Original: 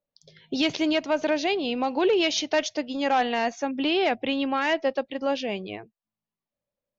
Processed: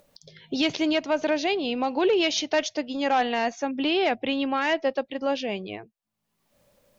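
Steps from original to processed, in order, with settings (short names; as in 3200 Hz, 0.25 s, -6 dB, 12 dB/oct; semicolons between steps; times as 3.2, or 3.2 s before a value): upward compressor, threshold -42 dBFS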